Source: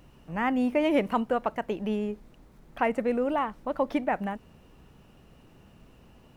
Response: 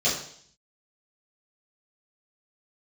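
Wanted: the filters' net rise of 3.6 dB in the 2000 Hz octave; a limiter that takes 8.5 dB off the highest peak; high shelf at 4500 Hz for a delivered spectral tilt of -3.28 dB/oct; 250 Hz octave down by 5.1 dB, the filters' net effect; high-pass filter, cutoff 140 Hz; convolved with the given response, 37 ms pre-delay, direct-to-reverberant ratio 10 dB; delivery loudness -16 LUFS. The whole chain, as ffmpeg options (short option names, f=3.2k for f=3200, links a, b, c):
-filter_complex "[0:a]highpass=140,equalizer=f=250:t=o:g=-5.5,equalizer=f=2k:t=o:g=3.5,highshelf=f=4.5k:g=4.5,alimiter=limit=-19dB:level=0:latency=1,asplit=2[a][b];[1:a]atrim=start_sample=2205,adelay=37[c];[b][c]afir=irnorm=-1:irlink=0,volume=-23dB[d];[a][d]amix=inputs=2:normalize=0,volume=15dB"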